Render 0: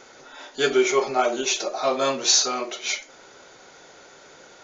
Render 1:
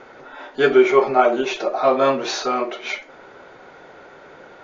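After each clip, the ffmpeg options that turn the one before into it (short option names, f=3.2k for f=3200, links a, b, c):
-af "lowpass=2k,volume=6.5dB"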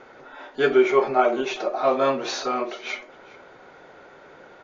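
-af "aecho=1:1:410:0.0841,volume=-4dB"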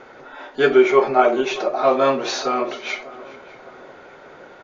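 -filter_complex "[0:a]asplit=2[a][b];[b]adelay=602,lowpass=f=2.2k:p=1,volume=-19dB,asplit=2[c][d];[d]adelay=602,lowpass=f=2.2k:p=1,volume=0.49,asplit=2[e][f];[f]adelay=602,lowpass=f=2.2k:p=1,volume=0.49,asplit=2[g][h];[h]adelay=602,lowpass=f=2.2k:p=1,volume=0.49[i];[a][c][e][g][i]amix=inputs=5:normalize=0,volume=4dB"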